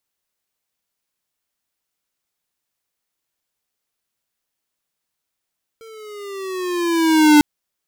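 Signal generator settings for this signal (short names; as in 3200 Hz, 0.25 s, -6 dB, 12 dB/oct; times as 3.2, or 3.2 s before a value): gliding synth tone square, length 1.60 s, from 454 Hz, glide -7.5 st, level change +32 dB, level -8.5 dB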